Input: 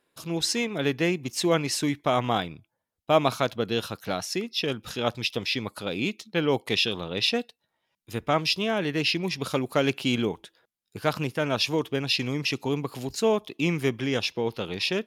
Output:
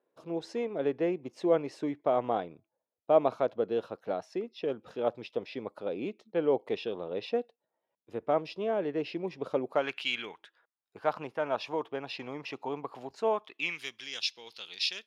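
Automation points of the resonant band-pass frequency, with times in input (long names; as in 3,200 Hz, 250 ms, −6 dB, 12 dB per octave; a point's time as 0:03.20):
resonant band-pass, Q 1.5
0:09.69 520 Hz
0:10.03 2,600 Hz
0:10.98 810 Hz
0:13.29 810 Hz
0:13.91 4,600 Hz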